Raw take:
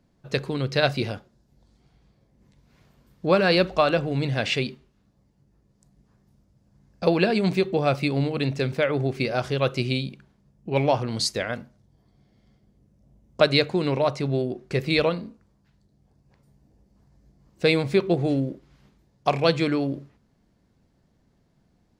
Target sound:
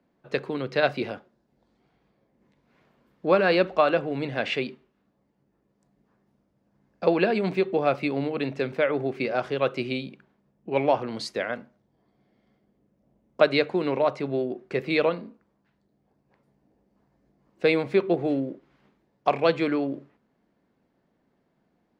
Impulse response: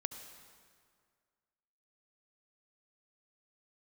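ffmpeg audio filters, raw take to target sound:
-filter_complex "[0:a]acrossover=split=200 3100:gain=0.141 1 0.2[link_01][link_02][link_03];[link_01][link_02][link_03]amix=inputs=3:normalize=0"

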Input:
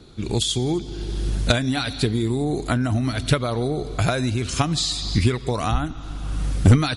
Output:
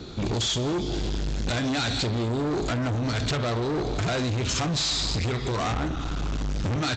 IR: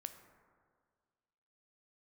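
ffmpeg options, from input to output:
-filter_complex "[0:a]asplit=2[link_01][link_02];[link_02]adelay=62,lowpass=frequency=1200:poles=1,volume=-20dB,asplit=2[link_03][link_04];[link_04]adelay=62,lowpass=frequency=1200:poles=1,volume=0.37,asplit=2[link_05][link_06];[link_06]adelay=62,lowpass=frequency=1200:poles=1,volume=0.37[link_07];[link_01][link_03][link_05][link_07]amix=inputs=4:normalize=0,acontrast=77,asplit=2[link_08][link_09];[link_09]alimiter=limit=-12dB:level=0:latency=1:release=115,volume=-1.5dB[link_10];[link_08][link_10]amix=inputs=2:normalize=0[link_11];[1:a]atrim=start_sample=2205,atrim=end_sample=3528,asetrate=48510,aresample=44100[link_12];[link_11][link_12]afir=irnorm=-1:irlink=0,acompressor=threshold=-18dB:ratio=3,aresample=16000,volume=25.5dB,asoftclip=hard,volume=-25.5dB,aresample=44100,highpass=frequency=40:poles=1,volume=1.5dB" -ar 44100 -c:a aac -b:a 128k

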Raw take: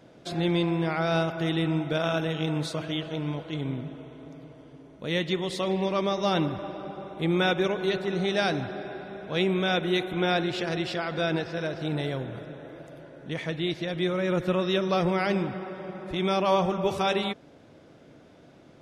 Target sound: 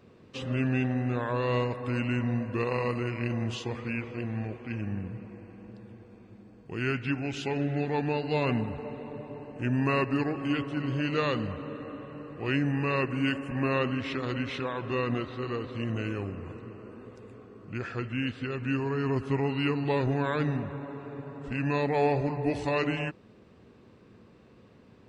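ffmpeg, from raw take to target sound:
ffmpeg -i in.wav -af "asetrate=33075,aresample=44100,volume=-2.5dB" out.wav

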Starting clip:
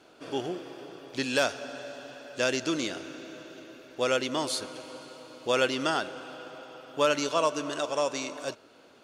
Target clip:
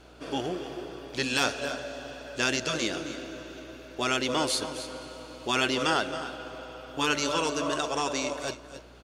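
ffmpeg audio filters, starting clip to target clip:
ffmpeg -i in.wav -af "aeval=exprs='val(0)+0.00126*(sin(2*PI*60*n/s)+sin(2*PI*2*60*n/s)/2+sin(2*PI*3*60*n/s)/3+sin(2*PI*4*60*n/s)/4+sin(2*PI*5*60*n/s)/5)':channel_layout=same,aecho=1:1:267|281:0.188|0.168,afftfilt=real='re*lt(hypot(re,im),0.282)':imag='im*lt(hypot(re,im),0.282)':win_size=1024:overlap=0.75,volume=3dB" out.wav

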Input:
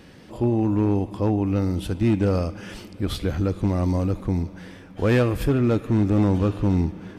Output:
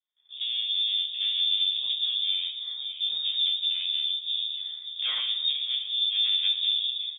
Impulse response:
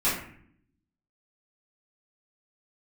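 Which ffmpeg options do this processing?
-filter_complex "[0:a]afwtdn=0.0282,asplit=2[link_01][link_02];[link_02]adelay=583.1,volume=-17dB,highshelf=frequency=4000:gain=-13.1[link_03];[link_01][link_03]amix=inputs=2:normalize=0,alimiter=limit=-19dB:level=0:latency=1:release=36,tremolo=f=0.61:d=0.41,asoftclip=type=tanh:threshold=-25dB,aeval=exprs='val(0)*sin(2*PI*56*n/s)':channel_layout=same,asplit=2[link_04][link_05];[link_05]adelay=13,volume=-3dB[link_06];[link_04][link_06]amix=inputs=2:normalize=0,agate=range=-33dB:threshold=-47dB:ratio=3:detection=peak,asplit=2[link_07][link_08];[1:a]atrim=start_sample=2205[link_09];[link_08][link_09]afir=irnorm=-1:irlink=0,volume=-15.5dB[link_10];[link_07][link_10]amix=inputs=2:normalize=0,lowpass=frequency=3100:width_type=q:width=0.5098,lowpass=frequency=3100:width_type=q:width=0.6013,lowpass=frequency=3100:width_type=q:width=0.9,lowpass=frequency=3100:width_type=q:width=2.563,afreqshift=-3700"

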